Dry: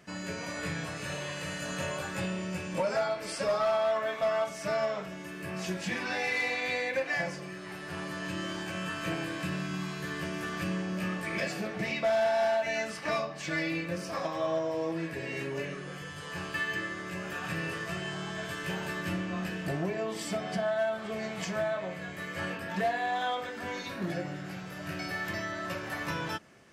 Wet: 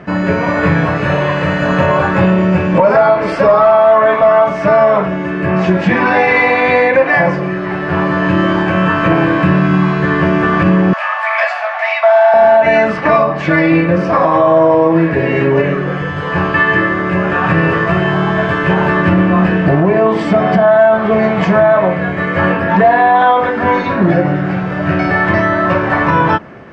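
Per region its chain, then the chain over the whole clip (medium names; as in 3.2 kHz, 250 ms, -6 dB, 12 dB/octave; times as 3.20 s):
10.93–12.34 s: steep high-pass 650 Hz 72 dB/octave + upward compressor, threshold -38 dBFS
whole clip: dynamic bell 1 kHz, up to +6 dB, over -49 dBFS, Q 4.3; low-pass 1.6 kHz 12 dB/octave; loudness maximiser +25.5 dB; trim -1 dB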